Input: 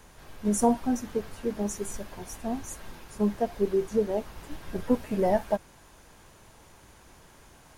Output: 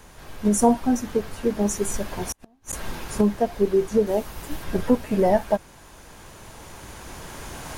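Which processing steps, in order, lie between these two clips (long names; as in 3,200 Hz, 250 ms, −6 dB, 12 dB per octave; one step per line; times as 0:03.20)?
camcorder AGC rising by 6.2 dB per second
0:02.18–0:02.73: gate with flip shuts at −22 dBFS, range −38 dB
0:04.06–0:04.63: high-shelf EQ 6,800 Hz → 9,900 Hz +9.5 dB
level +5 dB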